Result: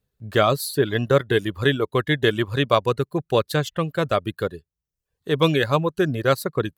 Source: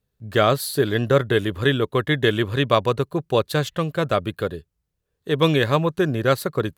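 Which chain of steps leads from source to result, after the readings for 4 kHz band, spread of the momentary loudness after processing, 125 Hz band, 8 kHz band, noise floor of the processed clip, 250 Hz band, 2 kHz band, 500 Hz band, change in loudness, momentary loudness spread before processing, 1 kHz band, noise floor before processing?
−0.5 dB, 6 LU, −1.5 dB, −0.5 dB, −85 dBFS, −1.0 dB, −0.5 dB, −0.5 dB, −0.5 dB, 6 LU, −0.5 dB, −77 dBFS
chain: reverb reduction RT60 0.65 s

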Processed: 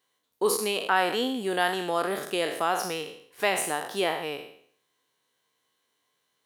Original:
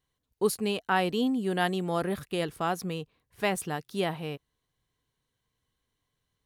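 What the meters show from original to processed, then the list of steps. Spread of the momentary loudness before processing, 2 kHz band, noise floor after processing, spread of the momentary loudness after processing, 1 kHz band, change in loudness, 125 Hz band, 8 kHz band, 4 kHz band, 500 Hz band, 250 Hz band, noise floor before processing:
10 LU, +5.0 dB, −76 dBFS, 8 LU, +4.0 dB, +2.5 dB, −9.5 dB, +7.0 dB, +5.5 dB, +2.5 dB, −3.5 dB, −82 dBFS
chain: peak hold with a decay on every bin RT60 0.60 s
high-pass filter 380 Hz 12 dB per octave
in parallel at +0.5 dB: downward compressor, threshold −34 dBFS, peak gain reduction 14 dB

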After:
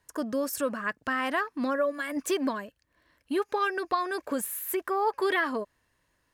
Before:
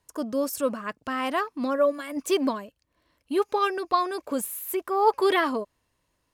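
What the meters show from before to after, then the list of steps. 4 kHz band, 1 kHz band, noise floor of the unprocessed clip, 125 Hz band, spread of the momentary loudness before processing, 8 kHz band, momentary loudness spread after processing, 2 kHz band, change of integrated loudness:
−4.5 dB, −4.0 dB, −75 dBFS, can't be measured, 9 LU, −1.0 dB, 6 LU, +2.0 dB, −3.0 dB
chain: parametric band 1,700 Hz +9 dB 0.48 octaves
downward compressor 2.5 to 1, threshold −26 dBFS, peak gain reduction 8.5 dB

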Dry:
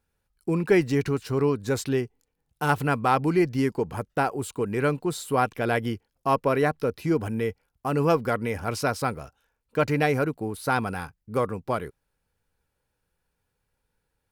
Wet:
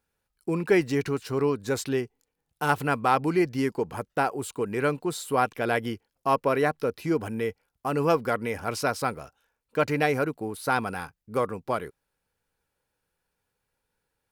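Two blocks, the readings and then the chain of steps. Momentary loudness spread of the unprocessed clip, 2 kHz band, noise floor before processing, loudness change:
9 LU, 0.0 dB, −79 dBFS, −1.5 dB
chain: low-shelf EQ 160 Hz −8.5 dB

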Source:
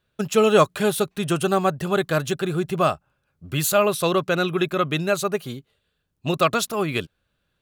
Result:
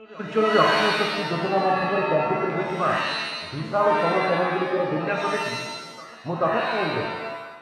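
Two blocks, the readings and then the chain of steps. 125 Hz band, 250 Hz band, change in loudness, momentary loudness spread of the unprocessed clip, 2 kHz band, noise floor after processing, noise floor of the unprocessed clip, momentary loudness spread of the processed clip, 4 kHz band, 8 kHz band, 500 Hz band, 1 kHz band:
−5.0 dB, −3.5 dB, −1.0 dB, 11 LU, +3.0 dB, −42 dBFS, −74 dBFS, 11 LU, +1.0 dB, −13.5 dB, −1.5 dB, +2.5 dB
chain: backwards echo 436 ms −23.5 dB
auto-filter low-pass saw down 0.4 Hz 450–2,300 Hz
reverb with rising layers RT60 1.1 s, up +7 semitones, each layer −2 dB, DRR 0 dB
level −7 dB

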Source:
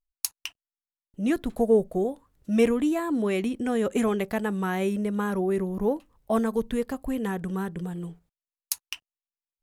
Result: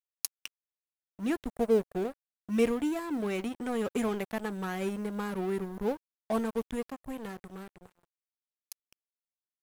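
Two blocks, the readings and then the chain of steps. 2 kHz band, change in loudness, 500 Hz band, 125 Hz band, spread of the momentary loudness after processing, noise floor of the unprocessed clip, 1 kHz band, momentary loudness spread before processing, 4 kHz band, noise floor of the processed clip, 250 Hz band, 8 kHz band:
−5.5 dB, −5.5 dB, −6.0 dB, −8.5 dB, 19 LU, below −85 dBFS, −5.5 dB, 12 LU, −6.0 dB, below −85 dBFS, −6.5 dB, −7.0 dB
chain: fade-out on the ending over 3.09 s
noise that follows the level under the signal 34 dB
dead-zone distortion −35 dBFS
level −4 dB

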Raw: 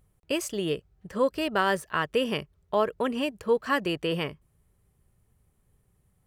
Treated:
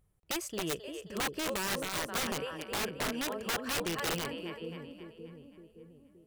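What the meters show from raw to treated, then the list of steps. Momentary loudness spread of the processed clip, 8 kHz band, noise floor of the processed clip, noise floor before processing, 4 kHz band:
16 LU, +5.0 dB, −65 dBFS, −69 dBFS, −1.5 dB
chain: echo with a time of its own for lows and highs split 450 Hz, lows 572 ms, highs 265 ms, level −6.5 dB
wrap-around overflow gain 20.5 dB
level −6.5 dB

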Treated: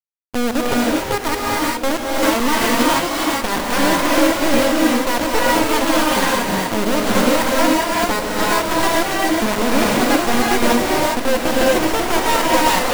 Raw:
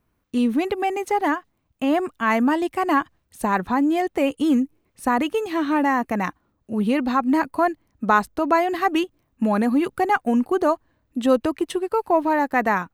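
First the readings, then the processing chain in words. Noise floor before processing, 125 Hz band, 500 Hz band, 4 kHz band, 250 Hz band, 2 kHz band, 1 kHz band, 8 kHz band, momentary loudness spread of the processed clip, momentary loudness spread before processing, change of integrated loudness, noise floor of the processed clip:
−70 dBFS, +7.5 dB, +5.5 dB, +16.5 dB, +2.5 dB, +7.5 dB, +4.0 dB, +20.5 dB, 4 LU, 7 LU, +5.0 dB, −24 dBFS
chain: adaptive Wiener filter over 25 samples
high-pass filter 40 Hz 24 dB per octave
treble cut that deepens with the level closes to 2,400 Hz, closed at −17 dBFS
spectral tilt −2.5 dB per octave
in parallel at −1 dB: brickwall limiter −19 dBFS, peak gain reduction 15 dB
on the sum: hollow resonant body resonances 530/930 Hz, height 16 dB, ringing for 95 ms
half-wave rectification
log-companded quantiser 2 bits
on a send: feedback delay with all-pass diffusion 989 ms, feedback 71%, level −11 dB
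on the sum: reverb whose tail is shaped and stops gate 440 ms rising, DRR −4.5 dB
level −11.5 dB

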